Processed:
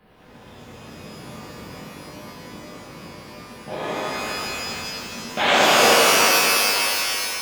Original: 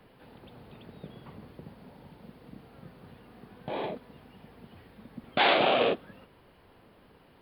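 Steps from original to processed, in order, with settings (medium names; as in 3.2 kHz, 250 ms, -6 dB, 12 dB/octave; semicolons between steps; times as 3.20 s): 4.11–4.76 s: waveshaping leveller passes 2; pitch-shifted reverb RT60 3.1 s, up +12 st, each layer -2 dB, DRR -9.5 dB; trim -1.5 dB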